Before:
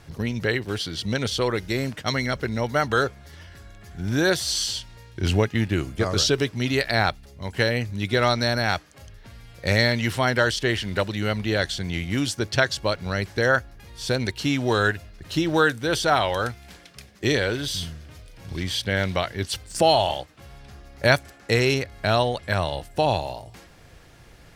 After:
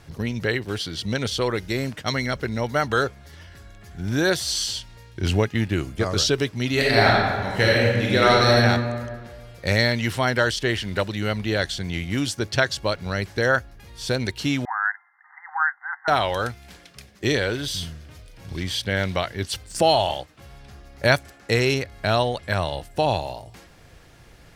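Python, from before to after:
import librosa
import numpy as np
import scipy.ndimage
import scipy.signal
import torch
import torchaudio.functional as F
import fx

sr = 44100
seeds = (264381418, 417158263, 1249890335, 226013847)

y = fx.reverb_throw(x, sr, start_s=6.72, length_s=1.84, rt60_s=1.7, drr_db=-4.5)
y = fx.brickwall_bandpass(y, sr, low_hz=730.0, high_hz=2100.0, at=(14.65, 16.08))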